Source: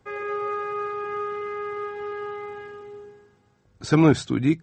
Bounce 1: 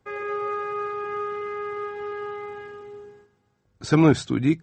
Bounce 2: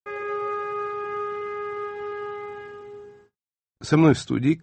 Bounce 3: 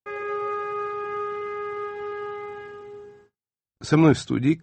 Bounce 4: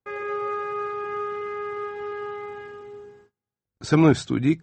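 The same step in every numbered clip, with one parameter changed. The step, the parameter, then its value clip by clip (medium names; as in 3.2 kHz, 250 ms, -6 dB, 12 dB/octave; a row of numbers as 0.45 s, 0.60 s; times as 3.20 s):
gate, range: -6 dB, -53 dB, -41 dB, -28 dB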